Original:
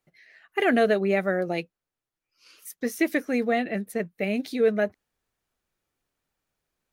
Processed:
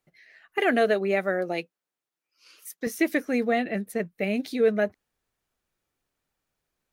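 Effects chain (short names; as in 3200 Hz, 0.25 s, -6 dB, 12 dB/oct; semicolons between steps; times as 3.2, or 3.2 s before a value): 0.58–2.87 Bessel high-pass 250 Hz, order 2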